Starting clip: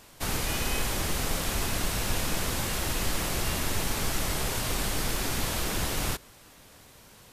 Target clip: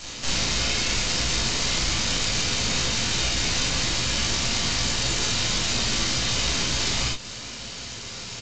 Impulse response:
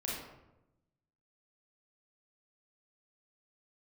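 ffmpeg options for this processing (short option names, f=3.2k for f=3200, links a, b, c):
-filter_complex "[0:a]highpass=f=110:p=1,bandreject=f=4k:w=18,asetrate=38367,aresample=44100,bass=f=250:g=9,treble=f=4k:g=7,acompressor=threshold=-33dB:ratio=6,volume=34dB,asoftclip=hard,volume=-34dB,equalizer=f=3.9k:t=o:w=2.2:g=11,aeval=exprs='0.0794*(cos(1*acos(clip(val(0)/0.0794,-1,1)))-cos(1*PI/2))+0.0178*(cos(6*acos(clip(val(0)/0.0794,-1,1)))-cos(6*PI/2))':c=same,asplit=2[a][b];[b]adelay=18,volume=-8.5dB[c];[a][c]amix=inputs=2:normalize=0[d];[1:a]atrim=start_sample=2205,atrim=end_sample=3528[e];[d][e]afir=irnorm=-1:irlink=0,volume=7dB" -ar 16000 -c:a g722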